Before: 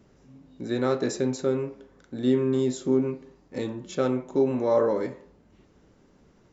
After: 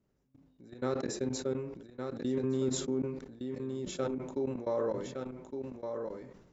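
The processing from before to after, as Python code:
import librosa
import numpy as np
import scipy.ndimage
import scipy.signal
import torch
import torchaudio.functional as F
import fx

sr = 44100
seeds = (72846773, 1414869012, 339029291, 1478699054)

p1 = fx.low_shelf(x, sr, hz=310.0, db=3.0)
p2 = fx.level_steps(p1, sr, step_db=23)
p3 = p2 + fx.echo_single(p2, sr, ms=1163, db=-6.0, dry=0)
p4 = fx.sustainer(p3, sr, db_per_s=59.0)
y = F.gain(torch.from_numpy(p4), -8.0).numpy()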